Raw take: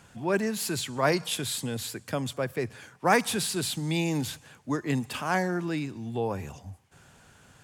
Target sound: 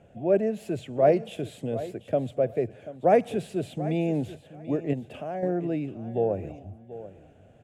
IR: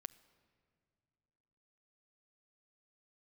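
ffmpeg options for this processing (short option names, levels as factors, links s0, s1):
-filter_complex "[0:a]asettb=1/sr,asplit=3[s0][s1][s2];[s0]atrim=end=4.934[s3];[s1]atrim=start=4.93:end=5.43,asetpts=PTS-STARTPTS,afade=t=in:d=0.004:c=qsin,afade=t=out:st=0.496:d=0.004:c=qsin,acompressor=threshold=0.0224:ratio=3[s4];[s2]atrim=start=5.426[s5];[s3][s4]acrossfade=d=0.004:c1=hsin:c2=qsin[s6];[s6][s5]acrossfade=d=0.004:c1=qsin:c2=hsin,firequalizer=gain_entry='entry(230,0);entry(650,10);entry(950,-15);entry(2700,-7);entry(4500,-23);entry(7100,-19);entry(14000,-24)':delay=0.05:min_phase=1,aecho=1:1:736|1472:0.178|0.0302"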